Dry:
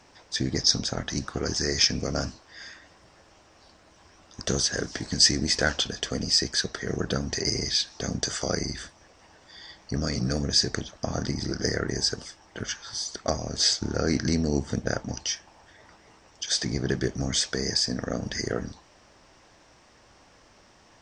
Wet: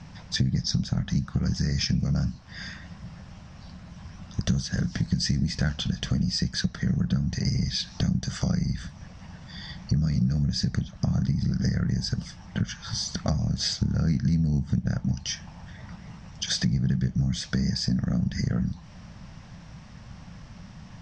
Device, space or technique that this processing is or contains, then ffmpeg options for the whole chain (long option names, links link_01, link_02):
jukebox: -af "lowpass=5800,lowshelf=frequency=250:width_type=q:width=3:gain=12.5,acompressor=threshold=-29dB:ratio=4,volume=4.5dB"